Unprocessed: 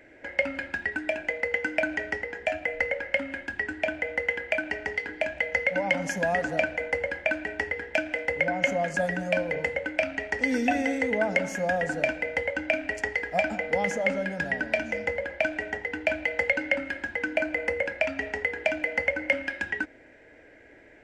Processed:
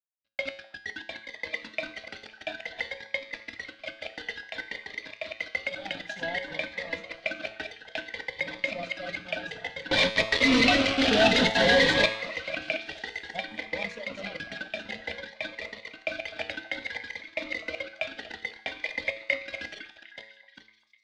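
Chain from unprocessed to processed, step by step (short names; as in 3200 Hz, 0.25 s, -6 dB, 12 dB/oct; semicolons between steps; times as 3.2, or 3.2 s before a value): regenerating reverse delay 0.439 s, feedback 48%, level -4 dB; pump 94 bpm, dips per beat 1, -6 dB, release 0.184 s; crossover distortion -32.5 dBFS; reverb removal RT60 0.65 s; notches 60/120/180/240/300/360/420/480/540 Hz; expander -33 dBFS; 9.91–12.06 fuzz box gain 37 dB, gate -43 dBFS; synth low-pass 3800 Hz, resonance Q 2.6; resonator 110 Hz, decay 0.71 s, harmonics all, mix 70%; delay with a stepping band-pass 0.252 s, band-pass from 970 Hz, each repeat 0.7 oct, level -12 dB; cascading phaser rising 0.57 Hz; gain +4.5 dB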